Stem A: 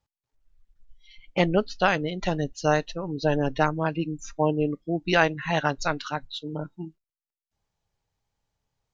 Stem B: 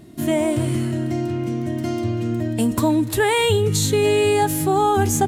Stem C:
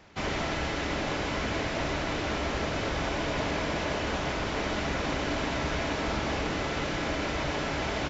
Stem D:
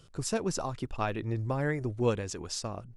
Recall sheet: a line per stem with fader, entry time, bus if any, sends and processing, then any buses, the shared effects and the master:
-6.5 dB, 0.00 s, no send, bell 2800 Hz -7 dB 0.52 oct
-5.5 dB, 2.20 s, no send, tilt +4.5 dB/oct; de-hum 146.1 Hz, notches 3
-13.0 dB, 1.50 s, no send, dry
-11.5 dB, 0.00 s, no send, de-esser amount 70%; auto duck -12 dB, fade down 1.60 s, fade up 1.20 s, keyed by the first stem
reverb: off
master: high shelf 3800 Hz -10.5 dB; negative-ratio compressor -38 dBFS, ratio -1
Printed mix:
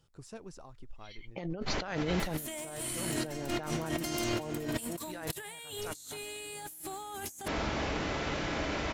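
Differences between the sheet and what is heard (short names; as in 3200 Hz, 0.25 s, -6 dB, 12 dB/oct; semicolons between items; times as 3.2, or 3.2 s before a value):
stem D -11.5 dB -> -22.5 dB; master: missing high shelf 3800 Hz -10.5 dB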